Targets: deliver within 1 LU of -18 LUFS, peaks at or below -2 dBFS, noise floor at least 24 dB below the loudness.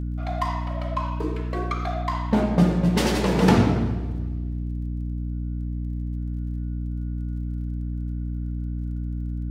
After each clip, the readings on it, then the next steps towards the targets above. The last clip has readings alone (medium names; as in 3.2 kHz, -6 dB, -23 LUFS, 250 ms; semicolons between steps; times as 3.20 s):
tick rate 31 per s; hum 60 Hz; highest harmonic 300 Hz; hum level -26 dBFS; loudness -26.0 LUFS; peak level -5.0 dBFS; loudness target -18.0 LUFS
-> de-click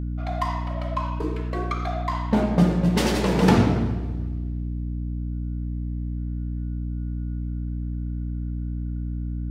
tick rate 0 per s; hum 60 Hz; highest harmonic 300 Hz; hum level -26 dBFS
-> hum notches 60/120/180/240/300 Hz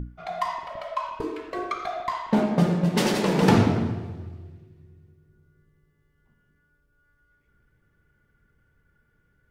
hum not found; loudness -25.0 LUFS; peak level -5.5 dBFS; loudness target -18.0 LUFS
-> trim +7 dB; peak limiter -2 dBFS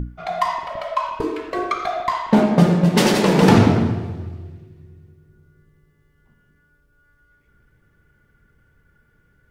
loudness -18.5 LUFS; peak level -2.0 dBFS; noise floor -61 dBFS